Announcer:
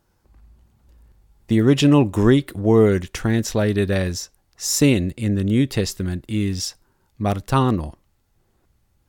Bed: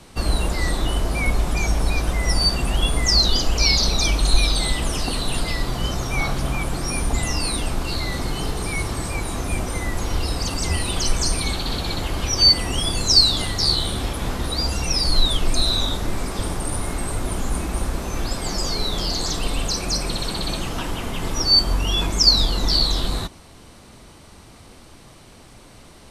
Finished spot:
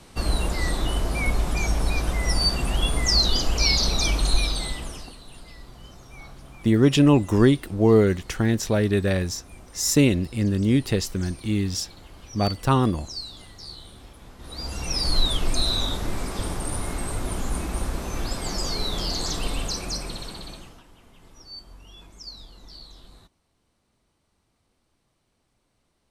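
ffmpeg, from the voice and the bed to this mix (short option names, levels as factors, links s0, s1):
-filter_complex "[0:a]adelay=5150,volume=0.794[s0];[1:a]volume=5.31,afade=t=out:st=4.19:d=0.97:silence=0.125893,afade=t=in:st=14.37:d=0.72:silence=0.133352,afade=t=out:st=19.45:d=1.38:silence=0.0749894[s1];[s0][s1]amix=inputs=2:normalize=0"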